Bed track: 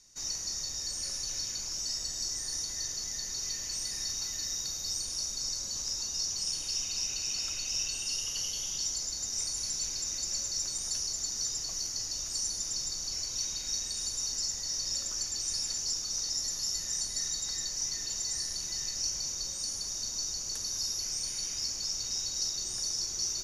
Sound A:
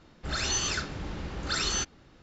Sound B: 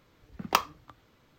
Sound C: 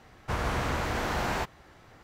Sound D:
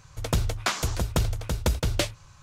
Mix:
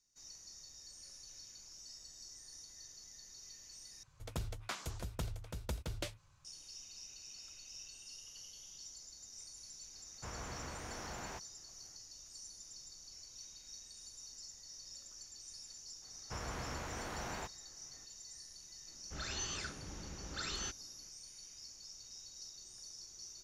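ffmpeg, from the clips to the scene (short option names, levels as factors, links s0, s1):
-filter_complex "[3:a]asplit=2[s0][s1];[0:a]volume=0.119,asplit=2[s2][s3];[s2]atrim=end=4.034[s4];[4:a]atrim=end=2.42,asetpts=PTS-STARTPTS,volume=0.158[s5];[s3]atrim=start=6.446[s6];[s0]atrim=end=2.03,asetpts=PTS-STARTPTS,volume=0.15,afade=t=in:d=0.004:c=hsin,afade=t=out:st=2.026:d=0.004:c=hsin,adelay=438354S[s7];[s1]atrim=end=2.03,asetpts=PTS-STARTPTS,volume=0.211,afade=t=in:d=0.004:c=hsin,afade=t=out:st=2.026:d=0.004:c=hsin,adelay=16020[s8];[1:a]atrim=end=2.22,asetpts=PTS-STARTPTS,volume=0.251,afade=t=in:d=0.004:c=hsin,afade=t=out:st=2.216:d=0.004:c=hsin,adelay=18870[s9];[s4][s5]acrossfade=d=0.004:c1=hsin:c2=hsin[s10];[s10][s6]acrossfade=d=0.004:c1=hsin:c2=hsin[s11];[s11][s7][s8][s9]amix=inputs=4:normalize=0"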